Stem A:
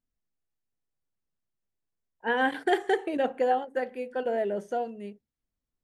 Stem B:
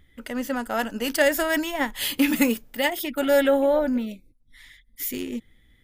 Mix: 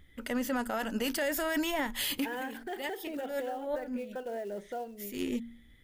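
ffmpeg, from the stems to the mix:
-filter_complex "[0:a]alimiter=level_in=0.5dB:limit=-24dB:level=0:latency=1:release=204,volume=-0.5dB,acrusher=bits=6:mode=log:mix=0:aa=0.000001,volume=-5.5dB,asplit=2[a][b];[1:a]bandreject=f=116.8:t=h:w=4,bandreject=f=233.6:t=h:w=4,acompressor=threshold=-24dB:ratio=2.5,volume=-1dB[c];[b]apad=whole_len=257393[d];[c][d]sidechaincompress=threshold=-54dB:ratio=8:attack=8.8:release=147[e];[a][e]amix=inputs=2:normalize=0,alimiter=limit=-23dB:level=0:latency=1:release=14"

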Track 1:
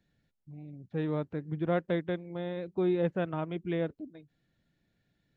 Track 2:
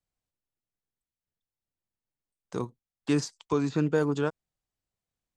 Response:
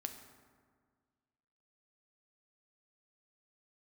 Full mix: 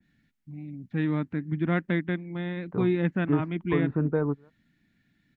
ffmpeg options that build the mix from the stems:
-filter_complex "[0:a]equalizer=f=250:t=o:w=1:g=11,equalizer=f=500:t=o:w=1:g=-11,equalizer=f=2k:t=o:w=1:g=9,volume=2.5dB,asplit=2[a][b];[1:a]lowpass=f=1.7k:w=0.5412,lowpass=f=1.7k:w=1.3066,lowshelf=f=150:g=10,adelay=200,volume=-2.5dB[c];[b]apad=whole_len=245438[d];[c][d]sidechaingate=range=-29dB:threshold=-57dB:ratio=16:detection=peak[e];[a][e]amix=inputs=2:normalize=0,adynamicequalizer=threshold=0.00562:dfrequency=2200:dqfactor=0.7:tfrequency=2200:tqfactor=0.7:attack=5:release=100:ratio=0.375:range=2.5:mode=cutabove:tftype=highshelf"

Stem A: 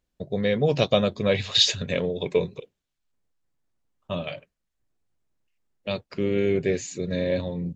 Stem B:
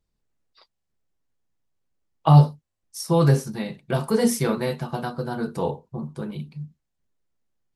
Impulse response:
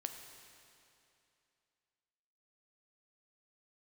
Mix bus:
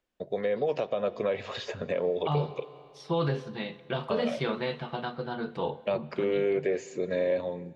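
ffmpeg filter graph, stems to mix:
-filter_complex "[0:a]highpass=f=250:p=1,equalizer=f=3.9k:t=o:w=0.25:g=-5.5,acrossover=split=430|1300[a][b][c];[a]acompressor=threshold=-38dB:ratio=4[d];[b]acompressor=threshold=-28dB:ratio=4[e];[c]acompressor=threshold=-48dB:ratio=4[f];[d][e][f]amix=inputs=3:normalize=0,volume=0.5dB,asplit=2[g][h];[h]volume=-10dB[i];[1:a]lowpass=f=3.4k:t=q:w=3.4,volume=-10dB,asplit=2[j][k];[k]volume=-8.5dB[l];[2:a]atrim=start_sample=2205[m];[i][l]amix=inputs=2:normalize=0[n];[n][m]afir=irnorm=-1:irlink=0[o];[g][j][o]amix=inputs=3:normalize=0,bass=f=250:g=-6,treble=f=4k:g=-8,dynaudnorm=f=190:g=7:m=3.5dB,alimiter=limit=-18.5dB:level=0:latency=1:release=126"

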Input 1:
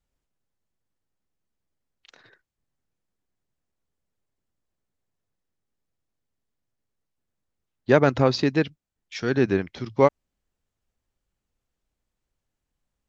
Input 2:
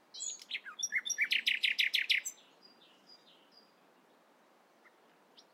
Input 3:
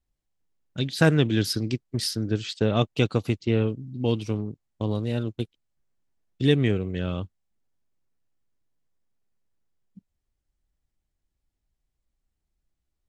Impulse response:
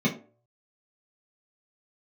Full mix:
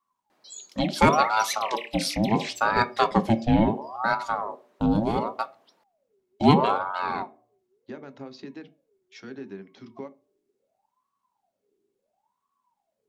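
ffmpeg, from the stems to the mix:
-filter_complex "[0:a]highpass=210,acompressor=threshold=-26dB:ratio=6,volume=-12dB,asplit=2[a][b];[b]volume=-20dB[c];[1:a]alimiter=level_in=4dB:limit=-24dB:level=0:latency=1:release=85,volume=-4dB,adelay=300,volume=-1.5dB[d];[2:a]aeval=exprs='val(0)*sin(2*PI*730*n/s+730*0.5/0.72*sin(2*PI*0.72*n/s))':c=same,volume=2.5dB,asplit=2[e][f];[f]volume=-17dB[g];[3:a]atrim=start_sample=2205[h];[c][g]amix=inputs=2:normalize=0[i];[i][h]afir=irnorm=-1:irlink=0[j];[a][d][e][j]amix=inputs=4:normalize=0"

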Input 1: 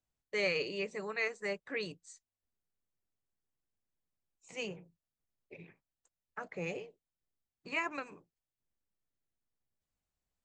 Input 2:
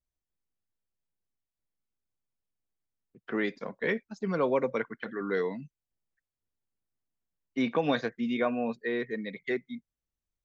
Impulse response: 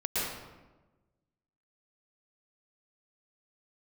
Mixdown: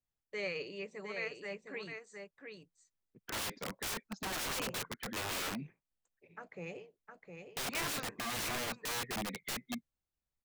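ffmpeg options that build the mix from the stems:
-filter_complex "[0:a]bass=f=250:g=1,treble=f=4k:g=-3,volume=-6dB,asplit=2[a][b];[b]volume=-6dB[c];[1:a]agate=range=-7dB:threshold=-54dB:ratio=16:detection=peak,highshelf=f=4.4k:g=-3.5,aeval=exprs='(mod(39.8*val(0)+1,2)-1)/39.8':c=same,volume=-1dB[d];[c]aecho=0:1:710:1[e];[a][d][e]amix=inputs=3:normalize=0"

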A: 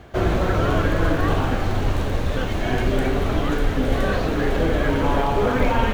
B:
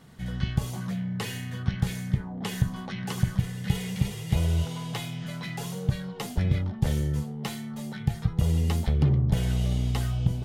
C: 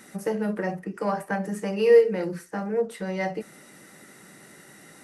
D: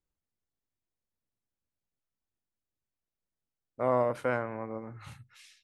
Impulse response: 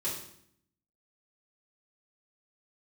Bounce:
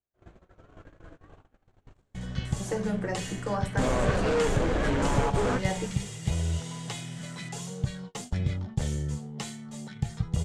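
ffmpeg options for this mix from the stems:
-filter_complex "[0:a]acrossover=split=2900[a][b];[b]acompressor=threshold=-46dB:ratio=4:attack=1:release=60[c];[a][c]amix=inputs=2:normalize=0,volume=-1dB[d];[1:a]adelay=1950,volume=-4dB[e];[2:a]adelay=2450,volume=-3.5dB[f];[3:a]highshelf=f=3.3k:g=4.5,volume=2.5dB,asplit=2[g][h];[h]apad=whole_len=261941[i];[d][i]sidechaingate=range=-23dB:threshold=-55dB:ratio=16:detection=peak[j];[j][f][g]amix=inputs=3:normalize=0,volume=18.5dB,asoftclip=hard,volume=-18.5dB,acompressor=threshold=-24dB:ratio=4,volume=0dB[k];[e][k]amix=inputs=2:normalize=0,agate=range=-29dB:threshold=-40dB:ratio=16:detection=peak,lowpass=f=7.6k:t=q:w=2.9"

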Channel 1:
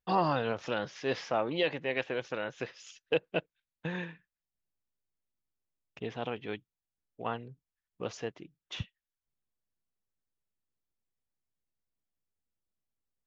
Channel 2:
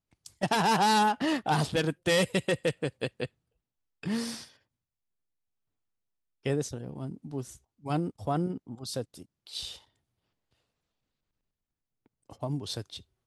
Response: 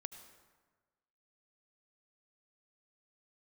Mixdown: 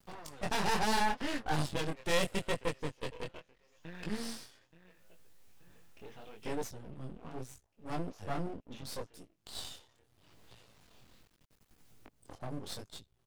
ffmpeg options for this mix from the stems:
-filter_complex "[0:a]acompressor=threshold=-34dB:ratio=5,volume=-4.5dB,asplit=2[a][b];[b]volume=-14.5dB[c];[1:a]acompressor=mode=upward:threshold=-37dB:ratio=2.5,volume=1dB,asplit=2[d][e];[e]apad=whole_len=585078[f];[a][f]sidechaincompress=threshold=-38dB:ratio=8:attack=10:release=112[g];[c]aecho=0:1:878|1756|2634|3512|4390|5268:1|0.44|0.194|0.0852|0.0375|0.0165[h];[g][d][h]amix=inputs=3:normalize=0,flanger=delay=17.5:depth=7.3:speed=0.76,aeval=exprs='max(val(0),0)':c=same"

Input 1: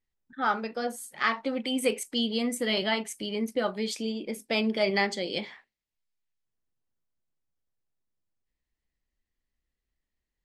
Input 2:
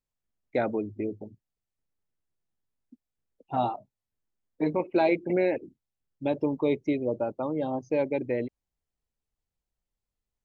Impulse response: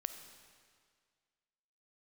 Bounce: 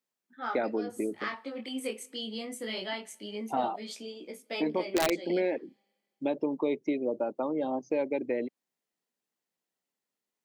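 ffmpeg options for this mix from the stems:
-filter_complex "[0:a]flanger=delay=16:depth=7.2:speed=0.23,volume=-5.5dB,asplit=2[a][b];[b]volume=-16.5dB[c];[1:a]volume=3dB[d];[2:a]atrim=start_sample=2205[e];[c][e]afir=irnorm=-1:irlink=0[f];[a][d][f]amix=inputs=3:normalize=0,highpass=f=200:w=0.5412,highpass=f=200:w=1.3066,aeval=exprs='(mod(3.55*val(0)+1,2)-1)/3.55':c=same,acompressor=threshold=-30dB:ratio=2"

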